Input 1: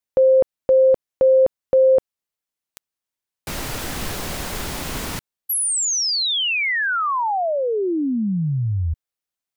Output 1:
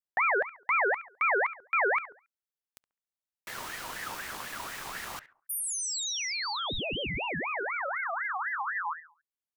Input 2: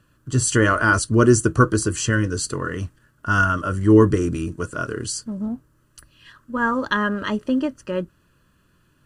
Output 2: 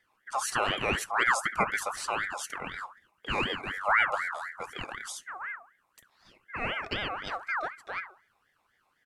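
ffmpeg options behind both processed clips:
-filter_complex "[0:a]asplit=2[a][b];[b]adelay=69,lowpass=f=880:p=1,volume=-12dB,asplit=2[c][d];[d]adelay=69,lowpass=f=880:p=1,volume=0.35,asplit=2[e][f];[f]adelay=69,lowpass=f=880:p=1,volume=0.35,asplit=2[g][h];[h]adelay=69,lowpass=f=880:p=1,volume=0.35[i];[a][c][e][g][i]amix=inputs=5:normalize=0,aeval=exprs='val(0)*sin(2*PI*1400*n/s+1400*0.35/4*sin(2*PI*4*n/s))':c=same,volume=-9dB"

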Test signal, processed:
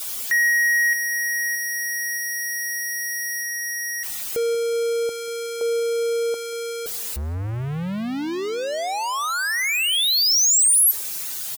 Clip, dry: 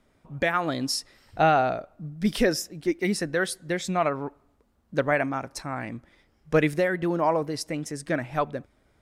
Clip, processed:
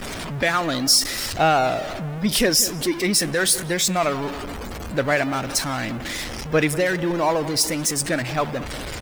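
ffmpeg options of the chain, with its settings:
-filter_complex "[0:a]aeval=exprs='val(0)+0.5*0.0501*sgn(val(0))':c=same,afftdn=nr=20:nf=-42,highshelf=f=3.3k:g=12,asplit=2[a][b];[b]adelay=186,lowpass=f=1.7k:p=1,volume=-15.5dB,asplit=2[c][d];[d]adelay=186,lowpass=f=1.7k:p=1,volume=0.47,asplit=2[e][f];[f]adelay=186,lowpass=f=1.7k:p=1,volume=0.47,asplit=2[g][h];[h]adelay=186,lowpass=f=1.7k:p=1,volume=0.47[i];[a][c][e][g][i]amix=inputs=5:normalize=0"

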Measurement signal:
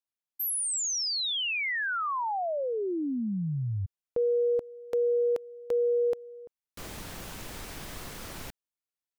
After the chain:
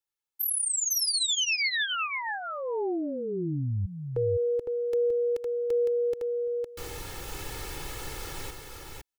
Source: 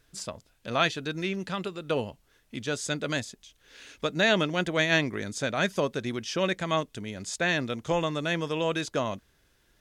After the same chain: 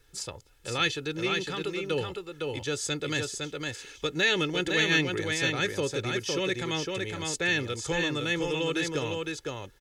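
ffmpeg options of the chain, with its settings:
-filter_complex "[0:a]aecho=1:1:2.3:0.73,aecho=1:1:509:0.596,acrossover=split=430|1600[a][b][c];[b]acompressor=threshold=-40dB:ratio=4:attack=1.7:release=62:knee=2.83:detection=peak[d];[a][d][c]amix=inputs=3:normalize=0"

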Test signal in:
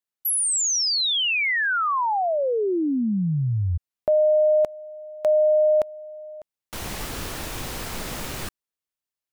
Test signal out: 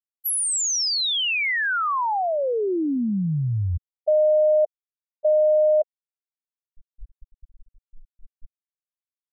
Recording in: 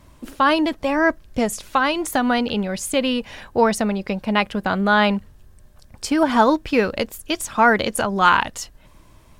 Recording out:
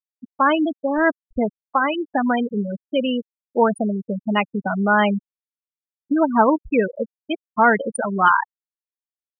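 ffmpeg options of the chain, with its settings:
-af "acrusher=bits=4:mode=log:mix=0:aa=0.000001,afftfilt=real='re*gte(hypot(re,im),0.282)':imag='im*gte(hypot(re,im),0.282)':win_size=1024:overlap=0.75"

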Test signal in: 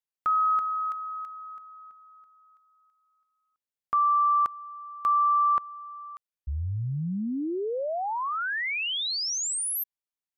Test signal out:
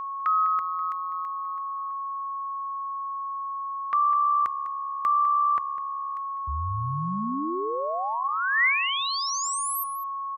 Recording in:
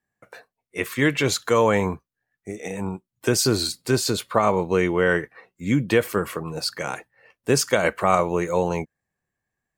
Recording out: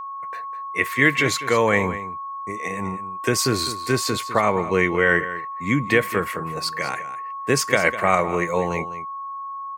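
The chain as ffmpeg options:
-filter_complex "[0:a]agate=range=-33dB:threshold=-50dB:ratio=3:release=103:detection=peak,highpass=f=41:w=0.5412,highpass=f=41:w=1.3066,equalizer=f=2k:w=2.6:g=10.5,aeval=exprs='val(0)+0.0355*sin(2*PI*1100*n/s)':c=same,asplit=2[a][b];[b]aecho=0:1:202:0.211[c];[a][c]amix=inputs=2:normalize=0,volume=-1dB"

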